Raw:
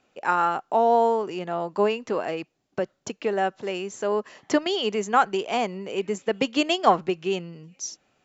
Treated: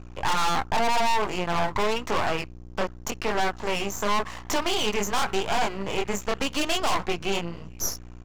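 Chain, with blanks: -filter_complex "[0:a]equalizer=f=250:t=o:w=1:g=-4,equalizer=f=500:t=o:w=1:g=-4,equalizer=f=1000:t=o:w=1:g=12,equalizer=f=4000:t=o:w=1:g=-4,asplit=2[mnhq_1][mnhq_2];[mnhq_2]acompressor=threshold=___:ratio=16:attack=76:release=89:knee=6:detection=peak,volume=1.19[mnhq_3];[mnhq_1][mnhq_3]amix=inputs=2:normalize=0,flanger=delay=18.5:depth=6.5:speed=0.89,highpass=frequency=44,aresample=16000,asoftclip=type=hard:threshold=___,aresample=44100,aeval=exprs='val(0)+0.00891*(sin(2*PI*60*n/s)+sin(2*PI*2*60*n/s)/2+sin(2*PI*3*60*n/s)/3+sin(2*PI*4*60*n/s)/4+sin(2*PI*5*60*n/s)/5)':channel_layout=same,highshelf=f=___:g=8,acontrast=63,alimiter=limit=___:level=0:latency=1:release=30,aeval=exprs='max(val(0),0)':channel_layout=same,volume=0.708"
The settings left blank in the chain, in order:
0.0794, 0.15, 3800, 0.282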